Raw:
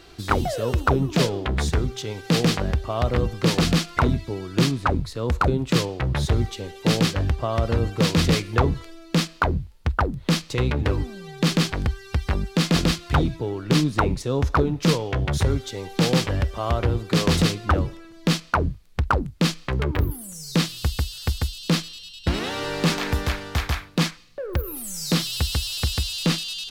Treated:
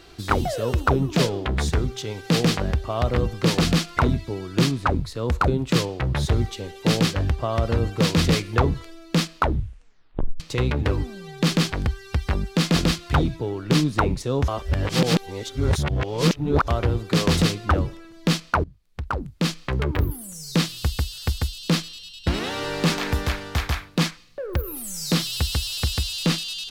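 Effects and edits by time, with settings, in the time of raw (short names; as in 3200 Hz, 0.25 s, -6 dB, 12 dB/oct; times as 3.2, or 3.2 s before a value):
9.37 tape stop 1.03 s
14.48–16.68 reverse
18.64–19.7 fade in, from -22.5 dB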